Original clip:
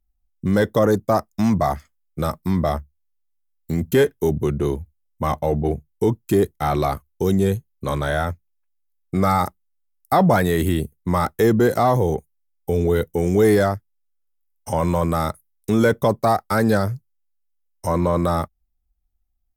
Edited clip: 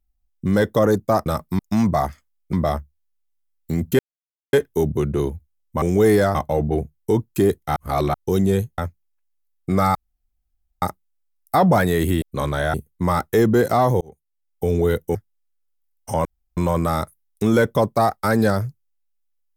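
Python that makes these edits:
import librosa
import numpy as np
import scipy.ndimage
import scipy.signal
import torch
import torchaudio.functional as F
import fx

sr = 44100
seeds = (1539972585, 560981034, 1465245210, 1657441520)

y = fx.edit(x, sr, fx.move(start_s=2.2, length_s=0.33, to_s=1.26),
    fx.insert_silence(at_s=3.99, length_s=0.54),
    fx.reverse_span(start_s=6.69, length_s=0.38),
    fx.move(start_s=7.71, length_s=0.52, to_s=10.8),
    fx.insert_room_tone(at_s=9.4, length_s=0.87),
    fx.fade_in_span(start_s=12.07, length_s=0.64),
    fx.move(start_s=13.21, length_s=0.53, to_s=5.28),
    fx.insert_room_tone(at_s=14.84, length_s=0.32), tone=tone)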